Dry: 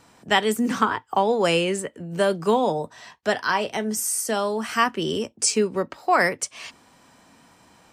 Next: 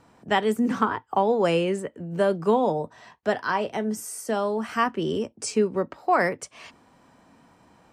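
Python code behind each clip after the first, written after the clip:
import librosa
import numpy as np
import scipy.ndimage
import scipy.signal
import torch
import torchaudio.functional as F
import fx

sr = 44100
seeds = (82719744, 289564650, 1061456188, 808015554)

y = fx.high_shelf(x, sr, hz=2100.0, db=-11.5)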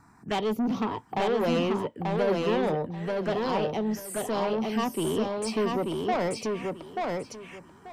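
y = fx.env_phaser(x, sr, low_hz=520.0, high_hz=1600.0, full_db=-26.0)
y = 10.0 ** (-25.5 / 20.0) * np.tanh(y / 10.0 ** (-25.5 / 20.0))
y = fx.echo_feedback(y, sr, ms=886, feedback_pct=20, wet_db=-3)
y = y * 10.0 ** (2.5 / 20.0)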